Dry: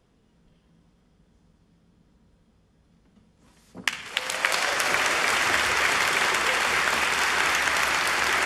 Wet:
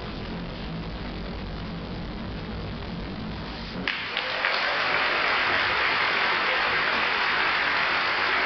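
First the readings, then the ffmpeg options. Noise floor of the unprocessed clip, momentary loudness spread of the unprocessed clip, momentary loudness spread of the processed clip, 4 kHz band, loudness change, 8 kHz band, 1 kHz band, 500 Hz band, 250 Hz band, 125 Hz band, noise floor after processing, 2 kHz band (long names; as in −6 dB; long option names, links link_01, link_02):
−63 dBFS, 7 LU, 12 LU, 0.0 dB, −2.5 dB, below −20 dB, 0.0 dB, +1.0 dB, +6.5 dB, +11.0 dB, −35 dBFS, 0.0 dB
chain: -af "aeval=exprs='val(0)+0.5*0.0596*sgn(val(0))':channel_layout=same,flanger=delay=18.5:depth=4.2:speed=1.2,aresample=11025,aresample=44100"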